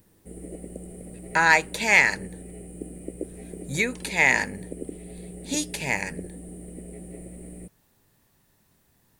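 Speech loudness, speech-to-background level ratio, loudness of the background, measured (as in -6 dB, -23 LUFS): -22.0 LUFS, 18.5 dB, -40.5 LUFS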